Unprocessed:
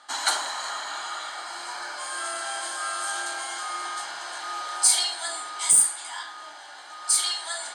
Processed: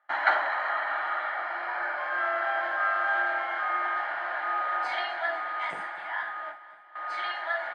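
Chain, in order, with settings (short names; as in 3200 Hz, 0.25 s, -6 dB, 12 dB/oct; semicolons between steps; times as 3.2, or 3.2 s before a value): gate with hold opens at -31 dBFS; speaker cabinet 250–2100 Hz, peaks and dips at 260 Hz -8 dB, 420 Hz -6 dB, 630 Hz +4 dB, 1000 Hz -4 dB, 1900 Hz +6 dB; feedback echo 0.251 s, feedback 56%, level -16 dB; gain +4.5 dB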